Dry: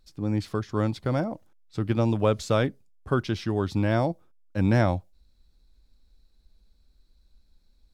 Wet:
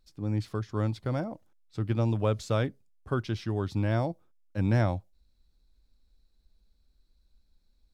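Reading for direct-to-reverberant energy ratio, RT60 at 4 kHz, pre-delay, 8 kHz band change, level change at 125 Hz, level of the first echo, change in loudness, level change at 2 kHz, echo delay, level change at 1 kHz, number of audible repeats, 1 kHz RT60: no reverb, no reverb, no reverb, no reading, -1.5 dB, no echo, -4.0 dB, -5.5 dB, no echo, -5.5 dB, no echo, no reverb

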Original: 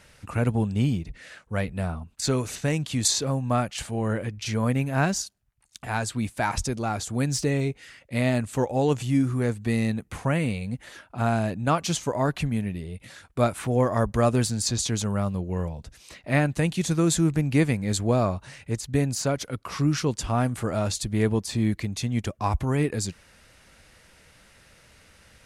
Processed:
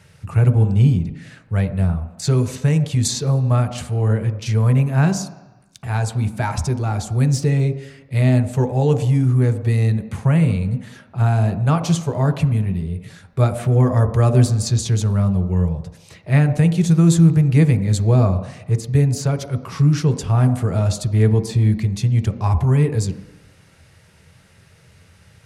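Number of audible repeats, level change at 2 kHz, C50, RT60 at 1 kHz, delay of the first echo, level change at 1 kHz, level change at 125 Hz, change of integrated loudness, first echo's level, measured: no echo, 0.0 dB, 11.5 dB, 1.1 s, no echo, +1.0 dB, +11.5 dB, +8.0 dB, no echo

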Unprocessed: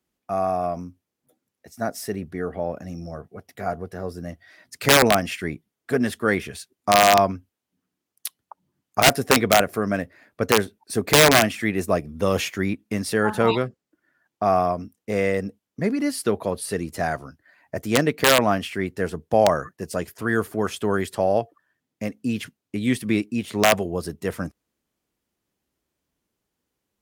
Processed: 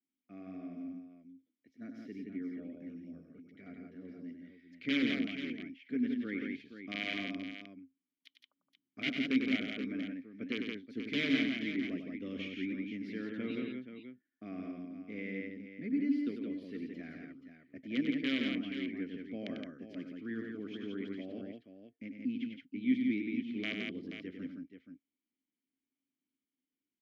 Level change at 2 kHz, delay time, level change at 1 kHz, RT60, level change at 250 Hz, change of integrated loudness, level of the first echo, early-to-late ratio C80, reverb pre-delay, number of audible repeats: -15.5 dB, 97 ms, -34.0 dB, no reverb, -8.5 dB, -15.5 dB, -6.5 dB, no reverb, no reverb, 3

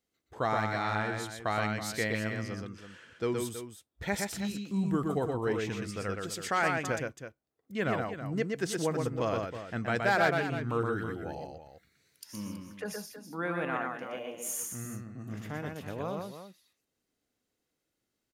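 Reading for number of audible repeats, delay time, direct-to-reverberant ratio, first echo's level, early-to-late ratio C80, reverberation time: 2, 121 ms, no reverb, -3.5 dB, no reverb, no reverb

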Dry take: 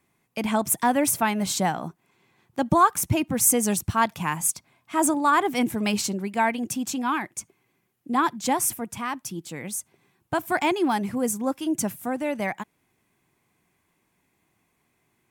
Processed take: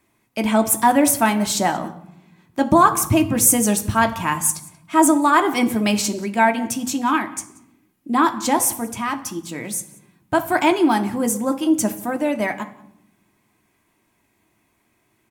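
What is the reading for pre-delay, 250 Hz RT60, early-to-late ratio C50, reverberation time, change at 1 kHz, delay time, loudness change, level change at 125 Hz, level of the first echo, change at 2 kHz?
3 ms, 1.4 s, 13.5 dB, 0.80 s, +5.5 dB, 182 ms, +5.5 dB, +4.0 dB, -22.5 dB, +5.5 dB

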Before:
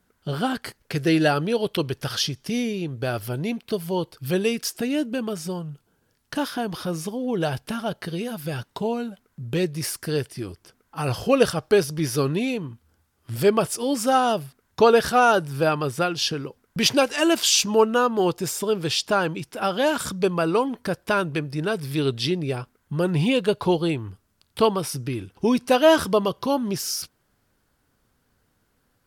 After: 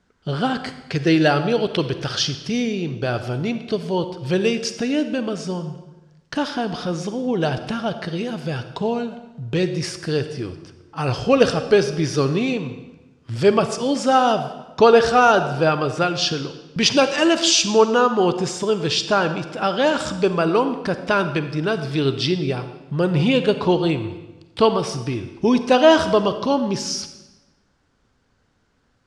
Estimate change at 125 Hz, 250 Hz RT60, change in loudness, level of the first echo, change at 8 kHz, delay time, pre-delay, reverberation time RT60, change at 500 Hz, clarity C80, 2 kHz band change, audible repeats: +3.5 dB, 1.2 s, +3.5 dB, no echo, +0.5 dB, no echo, 37 ms, 1.1 s, +3.5 dB, 12.0 dB, +3.5 dB, no echo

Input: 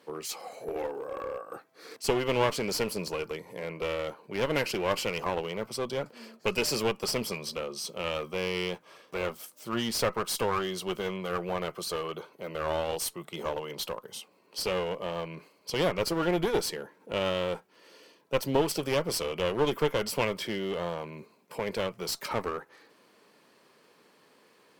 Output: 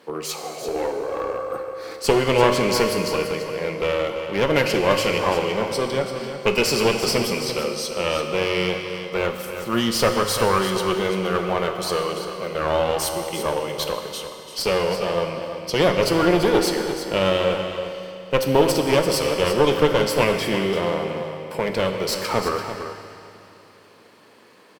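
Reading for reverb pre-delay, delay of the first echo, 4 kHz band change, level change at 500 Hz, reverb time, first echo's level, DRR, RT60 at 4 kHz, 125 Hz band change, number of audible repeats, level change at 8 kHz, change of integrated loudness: 7 ms, 340 ms, +9.0 dB, +10.0 dB, 2.8 s, -10.0 dB, 3.5 dB, 2.7 s, +10.0 dB, 1, +7.5 dB, +9.5 dB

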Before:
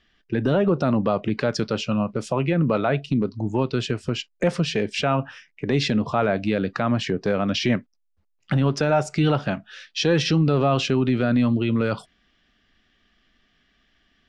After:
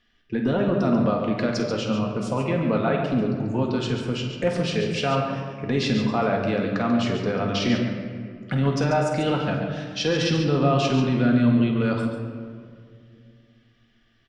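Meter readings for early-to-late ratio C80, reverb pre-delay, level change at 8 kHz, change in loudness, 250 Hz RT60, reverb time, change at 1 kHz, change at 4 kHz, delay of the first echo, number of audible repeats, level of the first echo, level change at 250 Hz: 4.0 dB, 4 ms, -1.5 dB, -0.5 dB, 2.9 s, 2.2 s, 0.0 dB, -1.5 dB, 50 ms, 2, -10.0 dB, +0.5 dB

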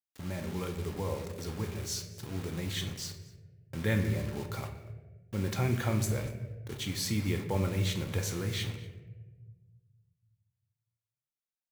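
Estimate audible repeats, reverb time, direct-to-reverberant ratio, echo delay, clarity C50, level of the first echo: 1, 1.3 s, 4.0 dB, 238 ms, 8.5 dB, -20.5 dB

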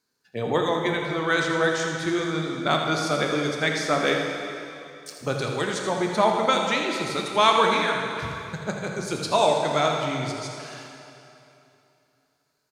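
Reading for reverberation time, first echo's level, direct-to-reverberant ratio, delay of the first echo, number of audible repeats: 2.9 s, -10.0 dB, 0.5 dB, 82 ms, 1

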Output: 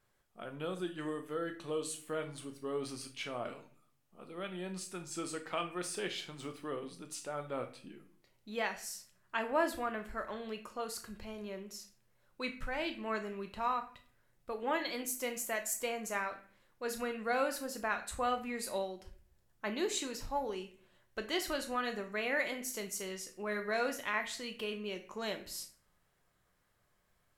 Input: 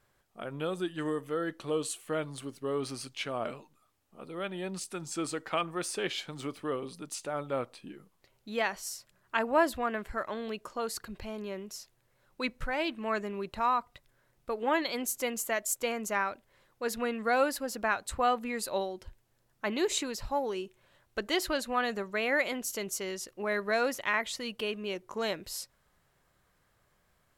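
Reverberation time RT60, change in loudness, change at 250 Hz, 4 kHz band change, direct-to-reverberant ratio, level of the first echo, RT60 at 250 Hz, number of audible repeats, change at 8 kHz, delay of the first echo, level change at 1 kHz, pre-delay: 0.50 s, -5.0 dB, -5.5 dB, -4.5 dB, 5.5 dB, no echo, 0.75 s, no echo, -4.0 dB, no echo, -5.5 dB, 5 ms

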